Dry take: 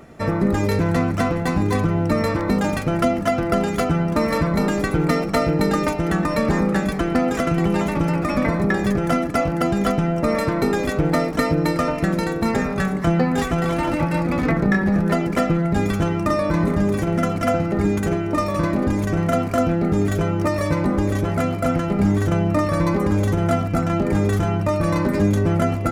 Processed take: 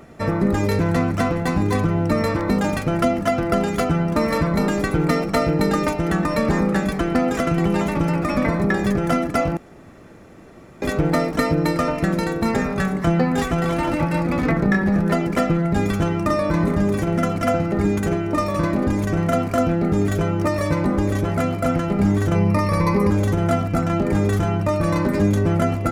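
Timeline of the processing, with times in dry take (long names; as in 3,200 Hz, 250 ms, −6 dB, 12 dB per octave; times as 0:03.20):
0:09.57–0:10.82: fill with room tone
0:22.35–0:23.10: EQ curve with evenly spaced ripples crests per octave 0.87, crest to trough 10 dB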